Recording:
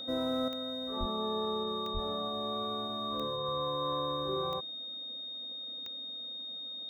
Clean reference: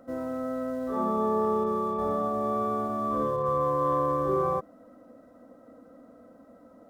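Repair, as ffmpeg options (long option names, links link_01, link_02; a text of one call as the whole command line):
ffmpeg -i in.wav -filter_complex "[0:a]adeclick=threshold=4,bandreject=frequency=3700:width=30,asplit=3[link_01][link_02][link_03];[link_01]afade=type=out:start_time=0.99:duration=0.02[link_04];[link_02]highpass=frequency=140:width=0.5412,highpass=frequency=140:width=1.3066,afade=type=in:start_time=0.99:duration=0.02,afade=type=out:start_time=1.11:duration=0.02[link_05];[link_03]afade=type=in:start_time=1.11:duration=0.02[link_06];[link_04][link_05][link_06]amix=inputs=3:normalize=0,asplit=3[link_07][link_08][link_09];[link_07]afade=type=out:start_time=1.93:duration=0.02[link_10];[link_08]highpass=frequency=140:width=0.5412,highpass=frequency=140:width=1.3066,afade=type=in:start_time=1.93:duration=0.02,afade=type=out:start_time=2.05:duration=0.02[link_11];[link_09]afade=type=in:start_time=2.05:duration=0.02[link_12];[link_10][link_11][link_12]amix=inputs=3:normalize=0,asetnsamples=nb_out_samples=441:pad=0,asendcmd='0.48 volume volume 8.5dB',volume=0dB" out.wav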